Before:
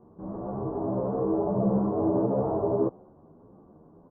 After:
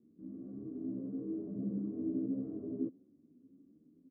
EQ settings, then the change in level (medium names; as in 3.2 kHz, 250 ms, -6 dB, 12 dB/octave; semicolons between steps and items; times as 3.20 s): vowel filter i; distance through air 260 m; bass shelf 240 Hz +8.5 dB; -3.0 dB